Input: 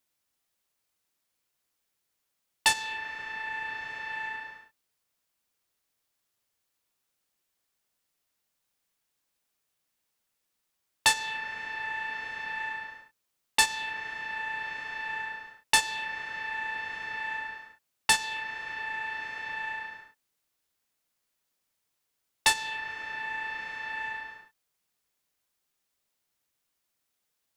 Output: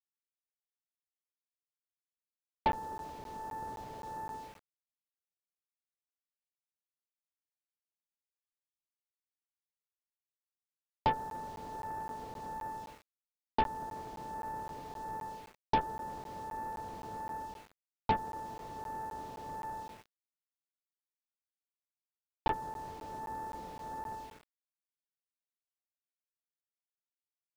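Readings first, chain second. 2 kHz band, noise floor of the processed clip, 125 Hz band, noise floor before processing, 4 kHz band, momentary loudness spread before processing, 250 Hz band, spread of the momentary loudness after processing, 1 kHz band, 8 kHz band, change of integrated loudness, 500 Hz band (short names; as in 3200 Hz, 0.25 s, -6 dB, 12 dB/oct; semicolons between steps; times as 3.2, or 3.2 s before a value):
-20.5 dB, under -85 dBFS, +7.5 dB, -81 dBFS, -20.5 dB, 12 LU, +7.5 dB, 11 LU, -1.0 dB, -25.5 dB, -9.0 dB, +5.0 dB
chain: Bessel low-pass 540 Hz, order 8; outdoor echo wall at 28 m, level -23 dB; added harmonics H 6 -22 dB, 8 -17 dB, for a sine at -23 dBFS; sample gate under -59.5 dBFS; crackling interface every 0.26 s, samples 512, zero, from 0.64; gain +8 dB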